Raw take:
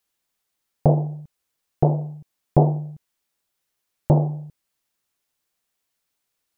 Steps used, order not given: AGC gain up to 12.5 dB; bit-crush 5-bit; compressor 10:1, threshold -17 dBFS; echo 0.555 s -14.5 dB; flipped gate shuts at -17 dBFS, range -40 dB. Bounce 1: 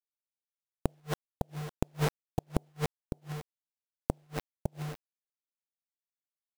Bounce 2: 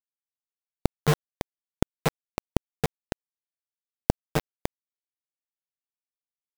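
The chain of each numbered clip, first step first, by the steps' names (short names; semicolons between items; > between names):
bit-crush > AGC > echo > compressor > flipped gate; compressor > flipped gate > echo > bit-crush > AGC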